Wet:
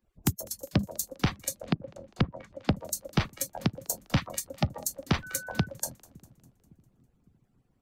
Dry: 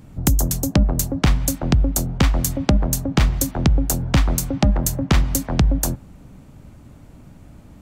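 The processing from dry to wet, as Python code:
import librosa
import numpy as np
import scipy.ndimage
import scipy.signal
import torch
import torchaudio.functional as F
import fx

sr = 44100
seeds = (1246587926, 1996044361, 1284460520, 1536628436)

y = fx.hpss_only(x, sr, part='percussive')
y = fx.echo_split(y, sr, split_hz=360.0, low_ms=558, high_ms=201, feedback_pct=52, wet_db=-10.5)
y = fx.env_lowpass_down(y, sr, base_hz=440.0, full_db=-14.0, at=(1.54, 2.7))
y = fx.dmg_tone(y, sr, hz=1500.0, level_db=-33.0, at=(5.22, 5.65), fade=0.02)
y = fx.noise_reduce_blind(y, sr, reduce_db=14)
y = F.gain(torch.from_numpy(y), -7.5).numpy()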